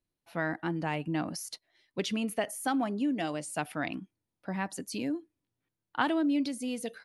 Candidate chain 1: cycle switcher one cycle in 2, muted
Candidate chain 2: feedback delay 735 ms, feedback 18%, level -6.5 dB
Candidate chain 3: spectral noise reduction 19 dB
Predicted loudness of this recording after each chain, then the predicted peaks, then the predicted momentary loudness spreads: -36.0 LUFS, -33.0 LUFS, -33.5 LUFS; -14.5 dBFS, -14.0 dBFS, -14.5 dBFS; 11 LU, 10 LU, 11 LU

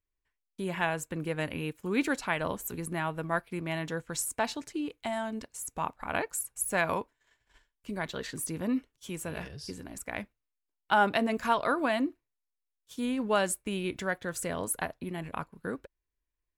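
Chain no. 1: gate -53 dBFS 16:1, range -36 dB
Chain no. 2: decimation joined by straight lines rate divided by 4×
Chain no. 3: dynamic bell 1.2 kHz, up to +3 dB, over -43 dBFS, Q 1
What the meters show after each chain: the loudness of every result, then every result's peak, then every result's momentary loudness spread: -32.5 LUFS, -33.0 LUFS, -31.0 LUFS; -13.5 dBFS, -13.5 dBFS, -11.0 dBFS; 11 LU, 12 LU, 12 LU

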